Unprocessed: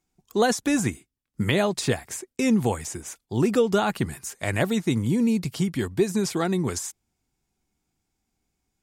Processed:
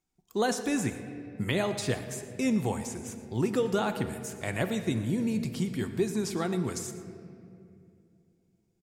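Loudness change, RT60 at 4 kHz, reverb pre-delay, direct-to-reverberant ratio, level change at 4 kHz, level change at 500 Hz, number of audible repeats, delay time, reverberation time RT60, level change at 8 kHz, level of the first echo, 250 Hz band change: -6.0 dB, 1.5 s, 5 ms, 7.5 dB, -6.0 dB, -6.0 dB, 1, 117 ms, 2.6 s, -6.0 dB, -17.0 dB, -6.0 dB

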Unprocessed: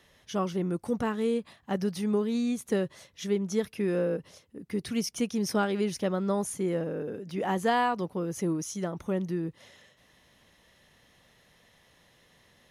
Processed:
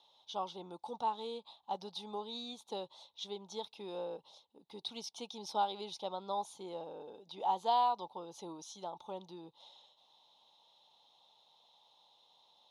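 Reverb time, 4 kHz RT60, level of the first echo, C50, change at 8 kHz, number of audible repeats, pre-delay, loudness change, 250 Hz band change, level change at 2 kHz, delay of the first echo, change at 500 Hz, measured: no reverb, no reverb, no echo, no reverb, -14.0 dB, no echo, no reverb, -9.5 dB, -21.5 dB, -21.0 dB, no echo, -13.0 dB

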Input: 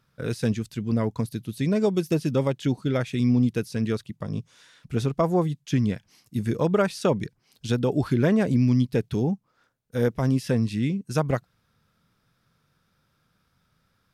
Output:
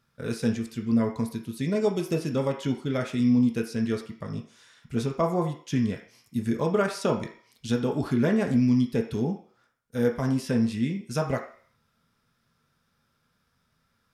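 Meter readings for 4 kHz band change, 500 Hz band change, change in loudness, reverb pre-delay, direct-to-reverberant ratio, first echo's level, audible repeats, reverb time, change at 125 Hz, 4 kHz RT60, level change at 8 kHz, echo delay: -1.5 dB, -2.0 dB, -1.5 dB, 3 ms, 1.5 dB, no echo, no echo, 0.50 s, -5.0 dB, 0.55 s, -0.5 dB, no echo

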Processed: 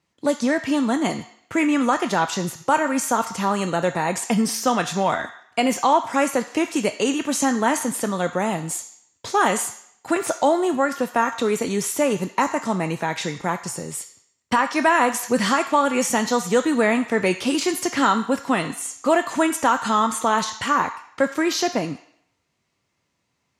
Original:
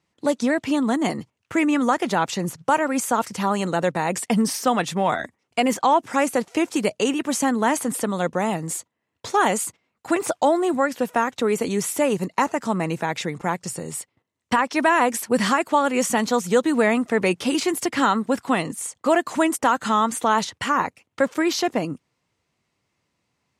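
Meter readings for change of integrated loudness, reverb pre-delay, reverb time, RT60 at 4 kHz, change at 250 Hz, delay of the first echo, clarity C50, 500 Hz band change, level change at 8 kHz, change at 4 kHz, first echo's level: +0.5 dB, 3 ms, 0.70 s, 0.70 s, 0.0 dB, no echo, 11.5 dB, 0.0 dB, +1.5 dB, +1.5 dB, no echo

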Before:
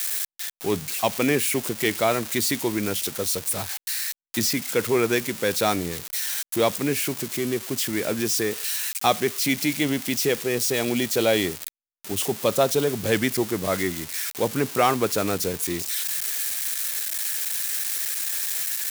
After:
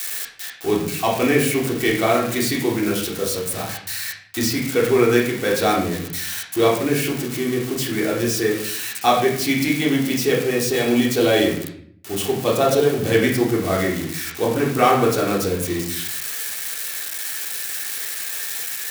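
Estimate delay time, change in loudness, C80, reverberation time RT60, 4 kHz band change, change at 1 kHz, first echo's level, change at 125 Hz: no echo, +3.5 dB, 8.5 dB, 0.60 s, +2.0 dB, +5.0 dB, no echo, +6.0 dB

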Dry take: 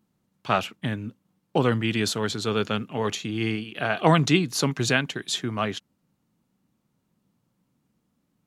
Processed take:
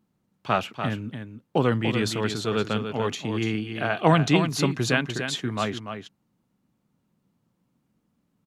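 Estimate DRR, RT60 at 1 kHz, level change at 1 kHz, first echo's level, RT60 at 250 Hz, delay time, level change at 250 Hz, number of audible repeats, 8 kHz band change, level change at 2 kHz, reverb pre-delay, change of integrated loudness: no reverb, no reverb, 0.0 dB, -8.0 dB, no reverb, 291 ms, +0.5 dB, 1, -3.5 dB, -0.5 dB, no reverb, 0.0 dB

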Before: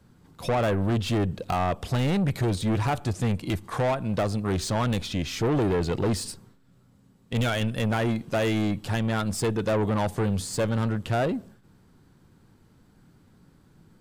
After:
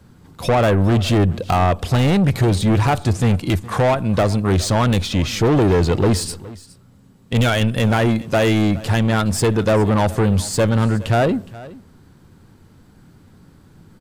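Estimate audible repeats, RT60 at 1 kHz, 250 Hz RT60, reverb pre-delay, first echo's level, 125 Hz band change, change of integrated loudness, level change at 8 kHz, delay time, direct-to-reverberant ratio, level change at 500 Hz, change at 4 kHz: 1, no reverb, no reverb, no reverb, -19.5 dB, +9.5 dB, +9.0 dB, +8.5 dB, 416 ms, no reverb, +8.5 dB, +8.5 dB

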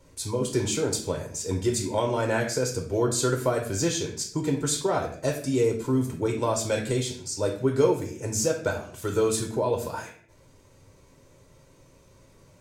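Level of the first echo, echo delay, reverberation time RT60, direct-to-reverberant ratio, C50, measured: no echo, no echo, 0.55 s, 1.5 dB, 7.5 dB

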